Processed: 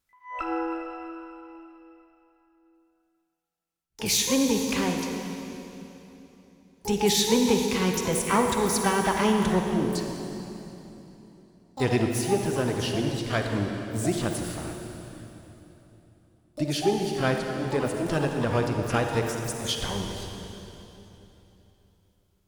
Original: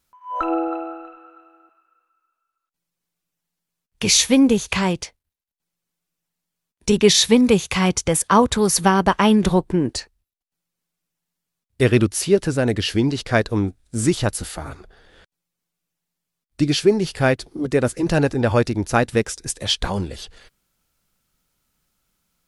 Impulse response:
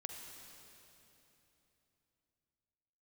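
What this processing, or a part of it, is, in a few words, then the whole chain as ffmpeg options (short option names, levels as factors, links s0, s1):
shimmer-style reverb: -filter_complex "[0:a]asettb=1/sr,asplit=3[s0][s1][s2];[s0]atrim=end=13.014[s3];[s1]atrim=start=13.01:end=13.52,asetpts=PTS-STARTPTS,afade=t=in:d=0.004:c=qsin,afade=t=out:st=0.506:d=0.004:c=qsin,equalizer=f=310:w=1.1:g=-4[s4];[s2]atrim=start=13.516[s5];[s3][s4]acrossfade=d=0.004:c1=hsin:c2=qsin[s6];[s6][s5]acrossfade=d=0.004:c1=qsin:c2=hsin,asplit=2[s7][s8];[s8]asetrate=88200,aresample=44100,atempo=0.5,volume=0.355[s9];[s7][s9]amix=inputs=2:normalize=0[s10];[1:a]atrim=start_sample=2205[s11];[s10][s11]afir=irnorm=-1:irlink=0,volume=0.562"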